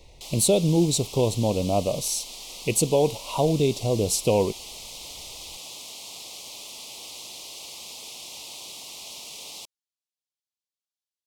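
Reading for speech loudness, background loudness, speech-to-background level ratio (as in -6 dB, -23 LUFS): -23.5 LUFS, -37.5 LUFS, 14.0 dB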